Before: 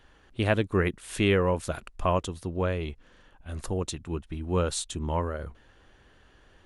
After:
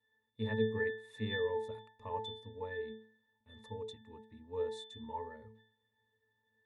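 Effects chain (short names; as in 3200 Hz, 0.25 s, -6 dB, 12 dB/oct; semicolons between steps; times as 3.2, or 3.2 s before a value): gate -49 dBFS, range -10 dB; RIAA curve recording; octave resonator A, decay 0.46 s; gain +9.5 dB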